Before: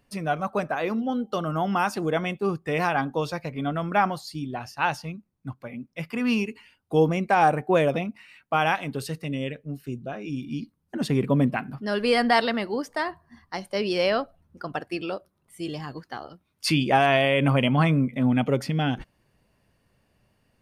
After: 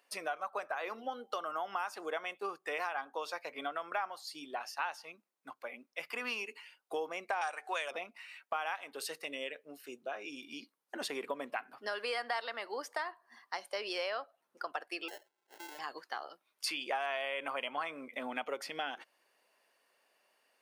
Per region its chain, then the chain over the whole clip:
7.41–7.91 s: frequency weighting ITU-R 468 + upward compressor, threshold -28 dBFS
15.08–15.79 s: static phaser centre 340 Hz, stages 8 + compression 5:1, threshold -39 dBFS + sample-rate reducer 1.2 kHz
whole clip: Bessel high-pass 640 Hz, order 4; dynamic bell 1.2 kHz, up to +4 dB, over -38 dBFS, Q 1; compression 4:1, threshold -36 dBFS

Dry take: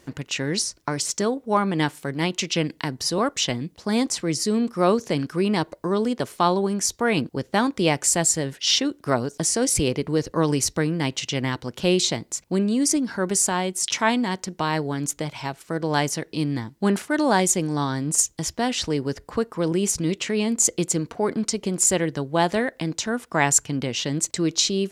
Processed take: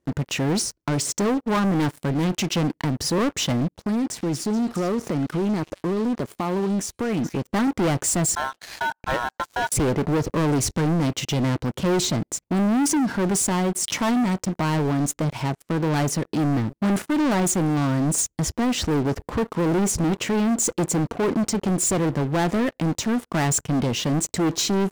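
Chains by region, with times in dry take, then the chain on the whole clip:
3.77–7.47 s: compression 2.5:1, threshold -31 dBFS + repeats whose band climbs or falls 214 ms, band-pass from 2.9 kHz, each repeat 0.7 oct, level -5.5 dB
8.35–9.72 s: distance through air 150 m + de-esser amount 90% + ring modulator 1.2 kHz
whole clip: FFT filter 270 Hz 0 dB, 4.5 kHz -13 dB, 7.7 kHz -10 dB; waveshaping leveller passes 5; trim -6.5 dB

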